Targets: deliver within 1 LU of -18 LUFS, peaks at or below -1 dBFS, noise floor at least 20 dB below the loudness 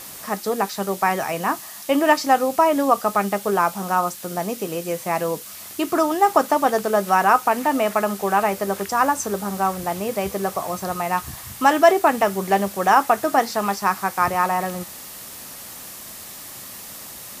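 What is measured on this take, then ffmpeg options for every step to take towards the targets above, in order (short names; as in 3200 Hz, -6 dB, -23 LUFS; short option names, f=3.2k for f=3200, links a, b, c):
noise floor -38 dBFS; noise floor target -41 dBFS; loudness -20.5 LUFS; peak -1.5 dBFS; loudness target -18.0 LUFS
-> -af "afftdn=nr=6:nf=-38"
-af "volume=2.5dB,alimiter=limit=-1dB:level=0:latency=1"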